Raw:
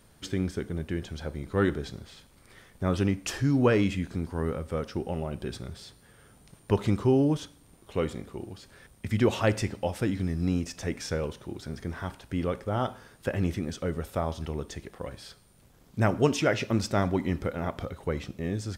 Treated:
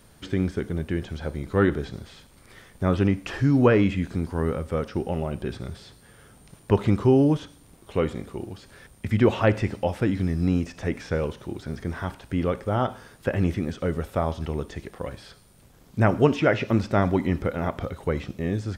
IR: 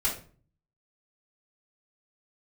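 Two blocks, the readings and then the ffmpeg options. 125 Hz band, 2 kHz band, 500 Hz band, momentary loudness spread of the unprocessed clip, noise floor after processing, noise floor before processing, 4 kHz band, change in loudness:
+4.5 dB, +4.0 dB, +4.5 dB, 16 LU, −54 dBFS, −58 dBFS, −1.0 dB, +4.5 dB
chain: -filter_complex "[0:a]acrossover=split=3100[link_01][link_02];[link_02]acompressor=threshold=-54dB:ratio=4:attack=1:release=60[link_03];[link_01][link_03]amix=inputs=2:normalize=0,volume=4.5dB"

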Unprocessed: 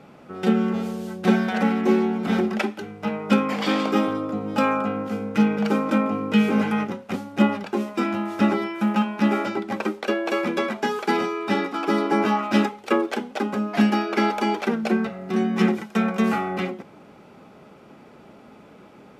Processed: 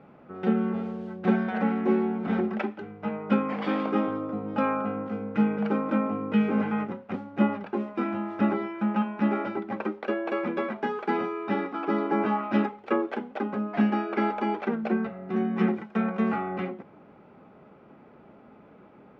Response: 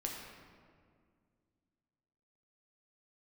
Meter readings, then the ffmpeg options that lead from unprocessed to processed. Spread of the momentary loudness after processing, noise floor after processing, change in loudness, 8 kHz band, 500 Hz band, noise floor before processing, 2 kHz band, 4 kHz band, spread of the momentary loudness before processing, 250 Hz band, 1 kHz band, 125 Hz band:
7 LU, −53 dBFS, −5.0 dB, can't be measured, −4.5 dB, −48 dBFS, −7.0 dB, −13.5 dB, 7 LU, −4.5 dB, −5.0 dB, −4.5 dB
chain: -af "lowpass=2000,volume=-4.5dB"

